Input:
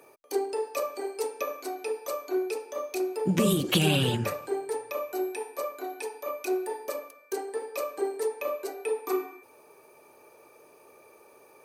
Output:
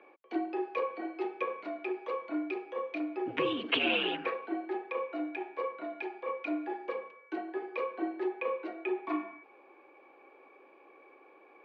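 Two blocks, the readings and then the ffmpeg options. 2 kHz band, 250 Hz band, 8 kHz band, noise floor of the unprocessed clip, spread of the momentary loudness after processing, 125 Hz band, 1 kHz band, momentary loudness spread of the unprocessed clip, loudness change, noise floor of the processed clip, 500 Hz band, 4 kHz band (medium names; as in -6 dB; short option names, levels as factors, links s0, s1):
+1.0 dB, -4.0 dB, under -35 dB, -57 dBFS, 9 LU, -26.0 dB, -2.0 dB, 11 LU, -4.5 dB, -59 dBFS, -5.5 dB, -4.0 dB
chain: -af "aemphasis=mode=production:type=bsi,highpass=f=360:t=q:w=0.5412,highpass=f=360:t=q:w=1.307,lowpass=f=3000:t=q:w=0.5176,lowpass=f=3000:t=q:w=0.7071,lowpass=f=3000:t=q:w=1.932,afreqshift=-68,volume=0.891"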